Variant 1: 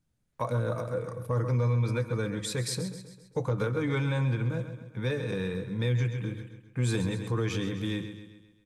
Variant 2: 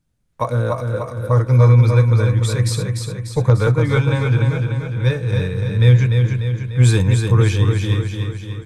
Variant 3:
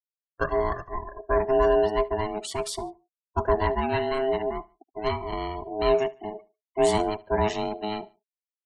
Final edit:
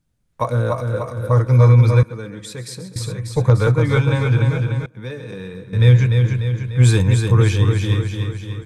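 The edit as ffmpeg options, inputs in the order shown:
ffmpeg -i take0.wav -i take1.wav -filter_complex "[0:a]asplit=2[link_01][link_02];[1:a]asplit=3[link_03][link_04][link_05];[link_03]atrim=end=2.032[link_06];[link_01]atrim=start=2.028:end=2.962[link_07];[link_04]atrim=start=2.958:end=4.862[link_08];[link_02]atrim=start=4.858:end=5.732[link_09];[link_05]atrim=start=5.728[link_10];[link_06][link_07]acrossfade=duration=0.004:curve1=hsin:curve2=hsin[link_11];[link_11][link_08]acrossfade=duration=0.004:curve1=hsin:curve2=hsin[link_12];[link_12][link_09]acrossfade=duration=0.004:curve1=hsin:curve2=hsin[link_13];[link_13][link_10]acrossfade=duration=0.004:curve1=hsin:curve2=hsin" out.wav

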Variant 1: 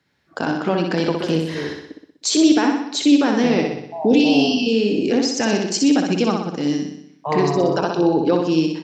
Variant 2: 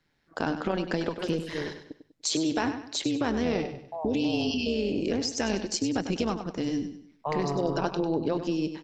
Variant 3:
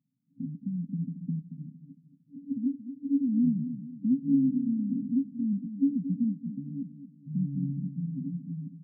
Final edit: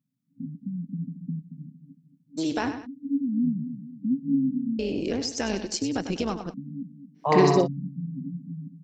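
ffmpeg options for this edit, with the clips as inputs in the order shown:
ffmpeg -i take0.wav -i take1.wav -i take2.wav -filter_complex "[1:a]asplit=2[link_01][link_02];[2:a]asplit=4[link_03][link_04][link_05][link_06];[link_03]atrim=end=2.39[link_07];[link_01]atrim=start=2.37:end=2.87[link_08];[link_04]atrim=start=2.85:end=4.792[link_09];[link_02]atrim=start=4.788:end=6.542[link_10];[link_05]atrim=start=6.538:end=7.24[link_11];[0:a]atrim=start=7.14:end=7.68[link_12];[link_06]atrim=start=7.58[link_13];[link_07][link_08]acrossfade=duration=0.02:curve1=tri:curve2=tri[link_14];[link_14][link_09]acrossfade=duration=0.02:curve1=tri:curve2=tri[link_15];[link_15][link_10]acrossfade=duration=0.004:curve1=hsin:curve2=hsin[link_16];[link_16][link_11]acrossfade=duration=0.004:curve1=hsin:curve2=hsin[link_17];[link_17][link_12]acrossfade=duration=0.1:curve1=tri:curve2=tri[link_18];[link_18][link_13]acrossfade=duration=0.1:curve1=tri:curve2=tri" out.wav

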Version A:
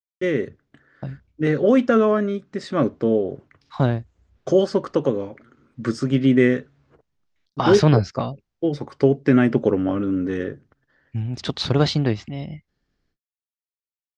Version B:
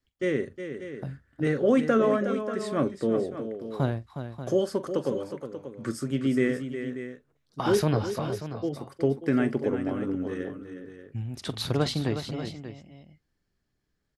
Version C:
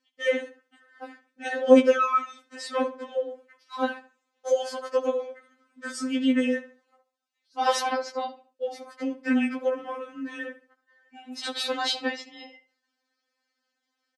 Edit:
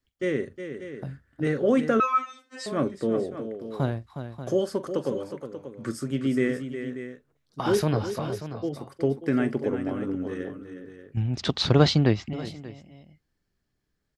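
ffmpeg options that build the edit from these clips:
ffmpeg -i take0.wav -i take1.wav -i take2.wav -filter_complex "[1:a]asplit=3[link_01][link_02][link_03];[link_01]atrim=end=2.002[link_04];[2:a]atrim=start=1.998:end=2.662[link_05];[link_02]atrim=start=2.658:end=11.172[link_06];[0:a]atrim=start=11.168:end=12.332[link_07];[link_03]atrim=start=12.328[link_08];[link_04][link_05]acrossfade=duration=0.004:curve1=hsin:curve2=hsin[link_09];[link_09][link_06]acrossfade=duration=0.004:curve1=hsin:curve2=hsin[link_10];[link_10][link_07]acrossfade=duration=0.004:curve1=hsin:curve2=hsin[link_11];[link_11][link_08]acrossfade=duration=0.004:curve1=hsin:curve2=hsin" out.wav

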